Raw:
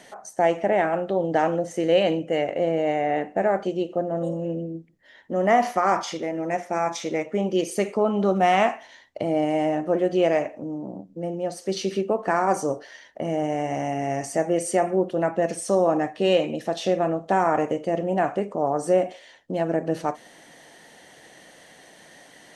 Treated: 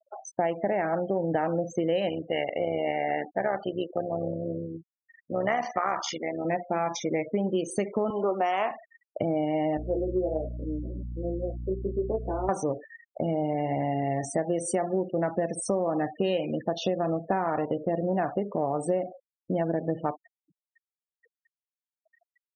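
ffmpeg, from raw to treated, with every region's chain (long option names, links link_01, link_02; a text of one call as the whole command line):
ffmpeg -i in.wav -filter_complex "[0:a]asettb=1/sr,asplit=3[link_01][link_02][link_03];[link_01]atrim=end=2.094[link_04];[link_02]atrim=start=2.09:end=6.45,asetpts=PTS-STARTPTS,afade=type=in:duration=0.004:curve=qsin,afade=type=out:start_time=4.356:duration=0.004:curve=qsin,tremolo=f=70:d=0.621,tiltshelf=frequency=660:gain=-5.5[link_05];[link_03]atrim=start=6.446[link_06];[link_04][link_05]acrossfade=duration=0.004:curve1=hsin:curve2=qsin[link_07];[link_07][link_06]acrossfade=duration=0.004:curve1=qsin:curve2=hsin,asettb=1/sr,asplit=3[link_08][link_09][link_10];[link_08]atrim=end=8.104[link_11];[link_09]atrim=start=8.1:end=8.71,asetpts=PTS-STARTPTS,afade=type=in:duration=0.004:curve=qsin,afade=type=out:start_time=0.606:duration=0.004:curve=qsin,highpass=frequency=290:width=0.5412,highpass=frequency=290:width=1.3066,equalizer=frequency=1000:width=5.7:gain=7[link_12];[link_10]atrim=start=8.706[link_13];[link_11][link_12]acrossfade=duration=0.004:curve1=hsin:curve2=qsin[link_14];[link_14][link_13]acrossfade=duration=0.004:curve1=qsin:curve2=hsin,asettb=1/sr,asplit=3[link_15][link_16][link_17];[link_15]atrim=end=9.774[link_18];[link_16]atrim=start=9.77:end=12.49,asetpts=PTS-STARTPTS,afade=type=in:duration=0.004:curve=qsin,afade=type=out:start_time=2.716:duration=0.004:curve=qsin,flanger=delay=17.5:depth=4.1:speed=1.3,bandpass=frequency=400:width_type=q:width=1.6,aeval=exprs='val(0)+0.01*(sin(2*PI*60*n/s)+sin(2*PI*2*60*n/s)/2+sin(2*PI*3*60*n/s)/3+sin(2*PI*4*60*n/s)/4+sin(2*PI*5*60*n/s)/5)':channel_layout=same[link_19];[link_17]atrim=start=12.486[link_20];[link_18][link_19]acrossfade=duration=0.004:curve1=hsin:curve2=qsin[link_21];[link_21][link_20]acrossfade=duration=0.004:curve1=qsin:curve2=hsin,equalizer=frequency=72:width=0.52:gain=7,afftfilt=real='re*gte(hypot(re,im),0.0251)':imag='im*gte(hypot(re,im),0.0251)':win_size=1024:overlap=0.75,acompressor=threshold=-23dB:ratio=6" out.wav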